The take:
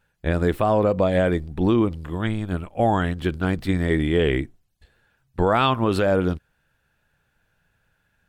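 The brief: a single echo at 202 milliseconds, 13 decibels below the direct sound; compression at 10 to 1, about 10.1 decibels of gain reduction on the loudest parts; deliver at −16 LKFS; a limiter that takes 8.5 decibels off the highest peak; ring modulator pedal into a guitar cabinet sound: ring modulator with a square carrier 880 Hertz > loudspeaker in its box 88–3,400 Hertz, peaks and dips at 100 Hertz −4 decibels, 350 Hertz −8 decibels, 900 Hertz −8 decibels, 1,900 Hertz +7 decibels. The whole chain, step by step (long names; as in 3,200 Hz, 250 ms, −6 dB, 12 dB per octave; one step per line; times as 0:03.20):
downward compressor 10 to 1, threshold −25 dBFS
brickwall limiter −23 dBFS
single-tap delay 202 ms −13 dB
ring modulator with a square carrier 880 Hz
loudspeaker in its box 88–3,400 Hz, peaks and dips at 100 Hz −4 dB, 350 Hz −8 dB, 900 Hz −8 dB, 1,900 Hz +7 dB
level +18 dB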